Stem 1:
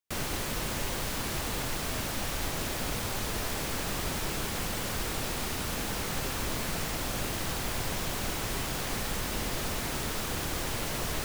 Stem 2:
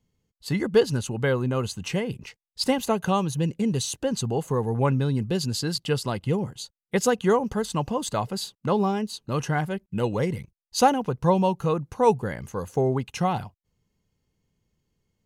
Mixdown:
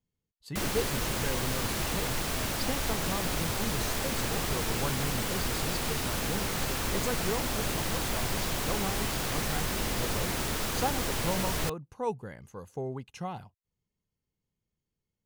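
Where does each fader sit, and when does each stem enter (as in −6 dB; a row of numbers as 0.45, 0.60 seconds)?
+1.5, −12.5 decibels; 0.45, 0.00 seconds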